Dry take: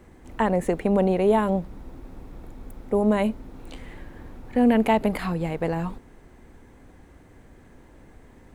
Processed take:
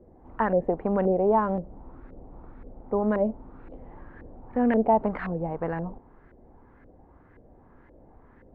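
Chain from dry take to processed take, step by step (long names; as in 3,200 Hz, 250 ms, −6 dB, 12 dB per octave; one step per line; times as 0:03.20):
auto-filter low-pass saw up 1.9 Hz 500–1,800 Hz
level −5 dB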